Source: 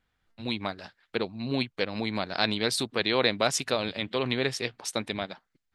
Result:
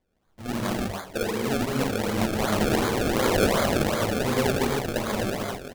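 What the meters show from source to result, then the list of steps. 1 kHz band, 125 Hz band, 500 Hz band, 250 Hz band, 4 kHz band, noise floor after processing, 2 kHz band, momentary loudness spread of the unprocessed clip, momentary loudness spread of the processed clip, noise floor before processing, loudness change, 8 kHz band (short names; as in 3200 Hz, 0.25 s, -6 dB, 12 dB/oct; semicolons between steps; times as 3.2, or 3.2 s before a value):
+6.0 dB, +8.0 dB, +5.0 dB, +6.5 dB, -2.5 dB, -67 dBFS, +2.0 dB, 11 LU, 8 LU, -78 dBFS, +3.5 dB, +2.5 dB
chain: soft clip -17 dBFS, distortion -14 dB; echo 1.032 s -15 dB; non-linear reverb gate 0.36 s flat, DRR -5.5 dB; decimation with a swept rate 31×, swing 100% 2.7 Hz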